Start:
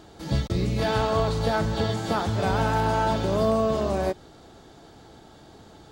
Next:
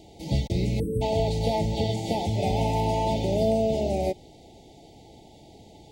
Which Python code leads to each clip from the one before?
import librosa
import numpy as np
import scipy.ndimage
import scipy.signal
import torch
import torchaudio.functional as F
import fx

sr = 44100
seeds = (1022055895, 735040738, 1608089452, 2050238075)

y = fx.spec_erase(x, sr, start_s=0.8, length_s=0.22, low_hz=540.0, high_hz=7800.0)
y = scipy.signal.sosfilt(scipy.signal.cheby1(5, 1.0, [870.0, 2000.0], 'bandstop', fs=sr, output='sos'), y)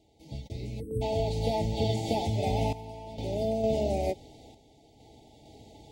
y = fx.notch_comb(x, sr, f0_hz=180.0)
y = fx.tremolo_random(y, sr, seeds[0], hz=2.2, depth_pct=85)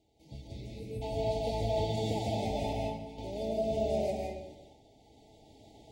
y = fx.rev_freeverb(x, sr, rt60_s=0.89, hf_ratio=0.75, predelay_ms=115, drr_db=-1.5)
y = y * 10.0 ** (-7.0 / 20.0)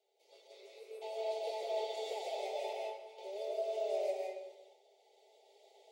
y = fx.octave_divider(x, sr, octaves=1, level_db=-1.0)
y = scipy.signal.sosfilt(scipy.signal.cheby1(6, 6, 380.0, 'highpass', fs=sr, output='sos'), y)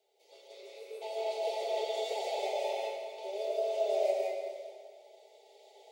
y = fx.rev_schroeder(x, sr, rt60_s=2.2, comb_ms=27, drr_db=4.5)
y = y * 10.0 ** (4.5 / 20.0)